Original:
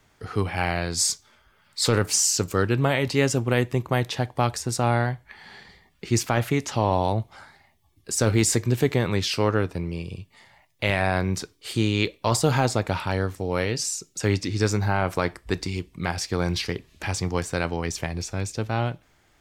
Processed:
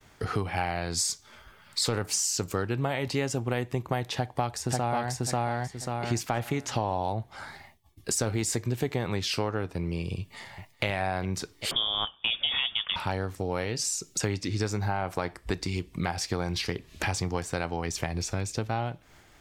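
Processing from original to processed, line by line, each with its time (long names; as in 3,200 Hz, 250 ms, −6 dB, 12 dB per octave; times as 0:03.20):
0:04.16–0:05.13: delay throw 540 ms, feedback 25%, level 0 dB
0:10.17–0:10.85: delay throw 400 ms, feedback 65%, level −15 dB
0:11.71–0:12.96: voice inversion scrambler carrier 3,500 Hz
whole clip: downward expander −57 dBFS; dynamic equaliser 780 Hz, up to +6 dB, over −39 dBFS, Q 3.3; downward compressor 4 to 1, threshold −37 dBFS; level +8.5 dB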